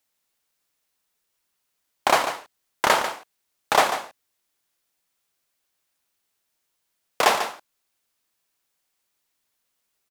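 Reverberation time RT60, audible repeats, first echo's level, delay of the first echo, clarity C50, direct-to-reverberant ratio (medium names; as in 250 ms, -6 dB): no reverb, 1, -10.0 dB, 144 ms, no reverb, no reverb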